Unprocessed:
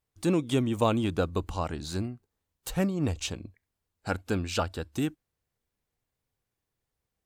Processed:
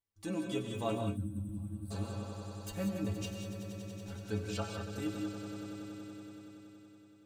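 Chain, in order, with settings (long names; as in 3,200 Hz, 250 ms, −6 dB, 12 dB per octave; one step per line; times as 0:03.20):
0:03.25–0:04.13: tube saturation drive 40 dB, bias 0.8
stiff-string resonator 100 Hz, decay 0.28 s, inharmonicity 0.008
echo that builds up and dies away 94 ms, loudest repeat 5, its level −13.5 dB
0:00.98–0:01.91: gain on a spectral selection 340–7,800 Hz −26 dB
reverb whose tail is shaped and stops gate 210 ms rising, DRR 4 dB
level −1 dB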